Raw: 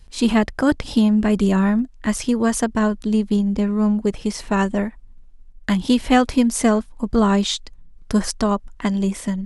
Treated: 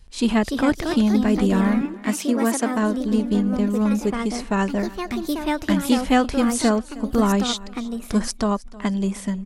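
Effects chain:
0:01.81–0:02.98: high-pass filter 160 Hz 24 dB per octave
repeating echo 313 ms, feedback 33%, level −20.5 dB
delay with pitch and tempo change per echo 330 ms, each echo +3 semitones, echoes 2, each echo −6 dB
level −2.5 dB

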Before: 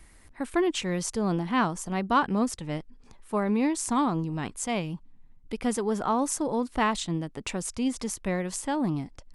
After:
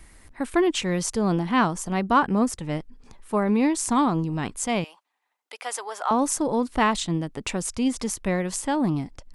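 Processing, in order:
0:02.06–0:03.48: dynamic equaliser 3,800 Hz, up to −5 dB, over −46 dBFS, Q 1.2
0:04.84–0:06.11: high-pass filter 650 Hz 24 dB per octave
level +4 dB

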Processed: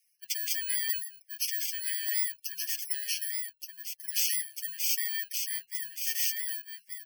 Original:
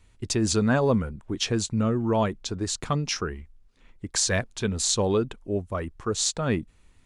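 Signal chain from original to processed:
samples in bit-reversed order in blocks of 32 samples
Butterworth high-pass 1,700 Hz 72 dB per octave
gate on every frequency bin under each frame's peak −15 dB strong
comb filter 6 ms, depth 55%
transient designer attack 0 dB, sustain +4 dB
on a send: single-tap delay 1,175 ms −5 dB
on the sum: level −3.5 dB

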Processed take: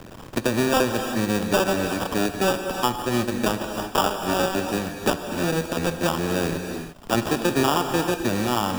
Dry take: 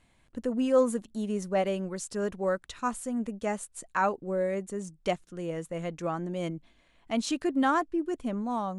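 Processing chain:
sub-harmonics by changed cycles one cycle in 2, muted
decimation without filtering 21×
reverb whose tail is shaped and stops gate 370 ms flat, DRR 7 dB
multiband upward and downward compressor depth 70%
level +8.5 dB

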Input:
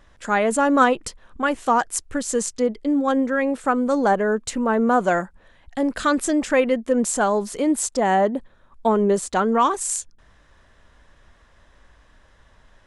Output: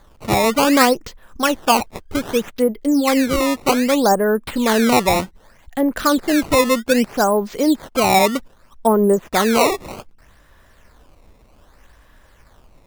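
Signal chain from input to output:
treble cut that deepens with the level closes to 1,300 Hz, closed at −15 dBFS
sample-and-hold swept by an LFO 16×, swing 160% 0.64 Hz
level +4 dB

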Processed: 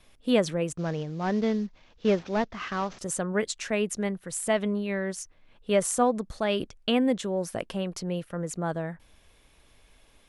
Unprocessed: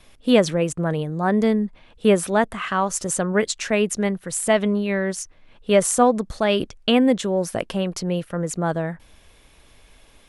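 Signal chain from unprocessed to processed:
0:00.77–0:02.99: variable-slope delta modulation 32 kbit/s
level −7 dB

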